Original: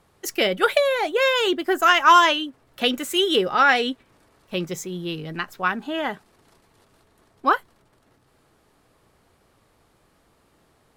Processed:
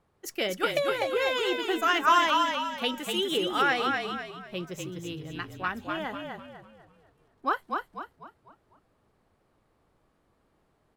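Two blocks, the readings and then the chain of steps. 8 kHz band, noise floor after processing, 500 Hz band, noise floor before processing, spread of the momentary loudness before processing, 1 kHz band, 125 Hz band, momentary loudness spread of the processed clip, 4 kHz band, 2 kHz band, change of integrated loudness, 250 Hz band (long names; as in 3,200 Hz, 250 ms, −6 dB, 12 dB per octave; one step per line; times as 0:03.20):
−7.0 dB, −70 dBFS, −7.0 dB, −63 dBFS, 15 LU, −7.0 dB, −5.0 dB, 15 LU, −7.0 dB, −7.0 dB, −7.5 dB, −6.0 dB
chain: echo with shifted repeats 248 ms, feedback 41%, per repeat −35 Hz, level −4 dB
one half of a high-frequency compander decoder only
level −8.5 dB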